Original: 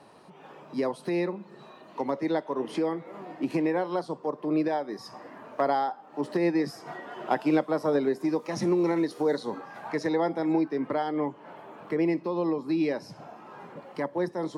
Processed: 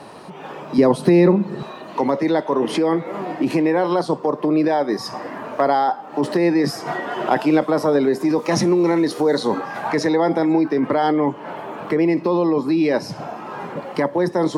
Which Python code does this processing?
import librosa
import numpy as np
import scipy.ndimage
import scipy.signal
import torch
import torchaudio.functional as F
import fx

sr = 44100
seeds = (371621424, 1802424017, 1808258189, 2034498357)

p1 = fx.over_compress(x, sr, threshold_db=-31.0, ratio=-0.5)
p2 = x + (p1 * librosa.db_to_amplitude(-2.5))
p3 = fx.low_shelf(p2, sr, hz=340.0, db=11.5, at=(0.78, 1.63))
y = p3 * librosa.db_to_amplitude(7.0)